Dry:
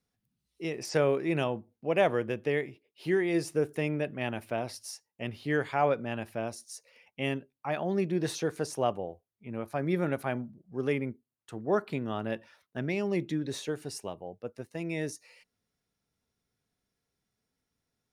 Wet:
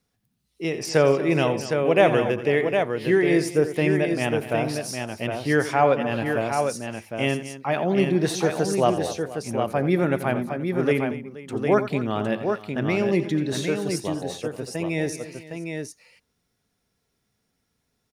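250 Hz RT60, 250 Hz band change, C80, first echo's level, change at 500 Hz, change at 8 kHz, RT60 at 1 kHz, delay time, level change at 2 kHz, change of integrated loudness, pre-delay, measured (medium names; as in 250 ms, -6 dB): no reverb, +9.0 dB, no reverb, -13.0 dB, +9.0 dB, +9.0 dB, no reverb, 86 ms, +9.0 dB, +8.5 dB, no reverb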